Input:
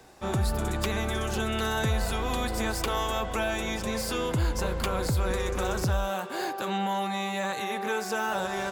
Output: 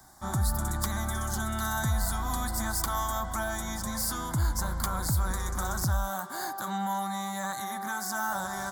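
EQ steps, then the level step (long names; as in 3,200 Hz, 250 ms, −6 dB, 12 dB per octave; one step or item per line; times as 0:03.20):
high-shelf EQ 6,900 Hz +10 dB
phaser with its sweep stopped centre 1,100 Hz, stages 4
0.0 dB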